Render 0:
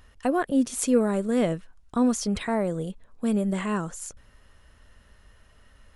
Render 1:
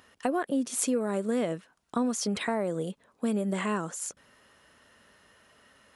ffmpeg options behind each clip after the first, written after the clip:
ffmpeg -i in.wav -af "highpass=210,acompressor=threshold=-27dB:ratio=5,volume=2dB" out.wav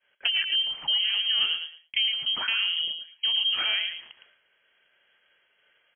ffmpeg -i in.wav -filter_complex "[0:a]asplit=2[link_01][link_02];[link_02]adelay=111,lowpass=frequency=2100:poles=1,volume=-6dB,asplit=2[link_03][link_04];[link_04]adelay=111,lowpass=frequency=2100:poles=1,volume=0.22,asplit=2[link_05][link_06];[link_06]adelay=111,lowpass=frequency=2100:poles=1,volume=0.22[link_07];[link_03][link_05][link_07]amix=inputs=3:normalize=0[link_08];[link_01][link_08]amix=inputs=2:normalize=0,agate=range=-33dB:threshold=-52dB:ratio=3:detection=peak,lowpass=frequency=2900:width_type=q:width=0.5098,lowpass=frequency=2900:width_type=q:width=0.6013,lowpass=frequency=2900:width_type=q:width=0.9,lowpass=frequency=2900:width_type=q:width=2.563,afreqshift=-3400,volume=2dB" out.wav

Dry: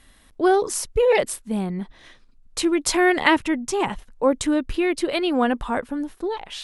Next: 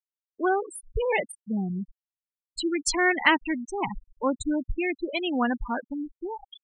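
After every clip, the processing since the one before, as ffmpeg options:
ffmpeg -i in.wav -af "afftfilt=real='re*gte(hypot(re,im),0.126)':imag='im*gte(hypot(re,im),0.126)':win_size=1024:overlap=0.75,equalizer=frequency=470:width_type=o:width=1.5:gain=-9.5" out.wav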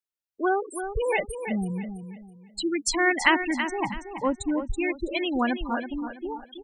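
ffmpeg -i in.wav -af "aecho=1:1:328|656|984|1312:0.355|0.11|0.0341|0.0106" out.wav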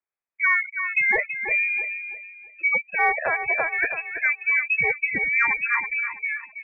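ffmpeg -i in.wav -af "alimiter=limit=-16dB:level=0:latency=1:release=303,lowpass=frequency=2200:width_type=q:width=0.5098,lowpass=frequency=2200:width_type=q:width=0.6013,lowpass=frequency=2200:width_type=q:width=0.9,lowpass=frequency=2200:width_type=q:width=2.563,afreqshift=-2600,acontrast=23" out.wav

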